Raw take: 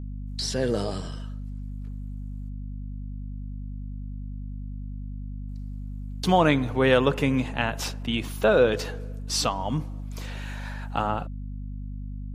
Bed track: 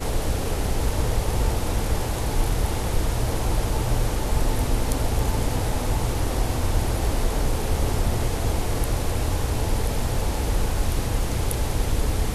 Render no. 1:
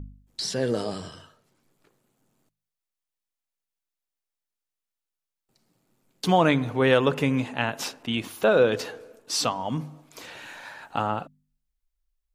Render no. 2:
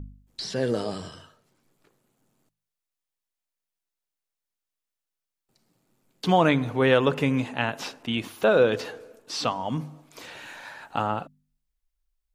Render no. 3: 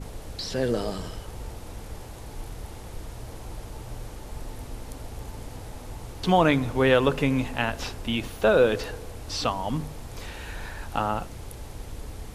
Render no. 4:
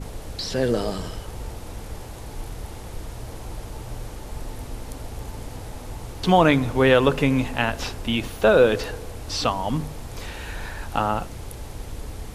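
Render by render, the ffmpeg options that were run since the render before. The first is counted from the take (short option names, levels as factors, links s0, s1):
-af "bandreject=f=50:t=h:w=4,bandreject=f=100:t=h:w=4,bandreject=f=150:t=h:w=4,bandreject=f=200:t=h:w=4,bandreject=f=250:t=h:w=4"
-filter_complex "[0:a]acrossover=split=4900[s0][s1];[s1]acompressor=threshold=0.00562:ratio=4:attack=1:release=60[s2];[s0][s2]amix=inputs=2:normalize=0"
-filter_complex "[1:a]volume=0.178[s0];[0:a][s0]amix=inputs=2:normalize=0"
-af "volume=1.5,alimiter=limit=0.708:level=0:latency=1"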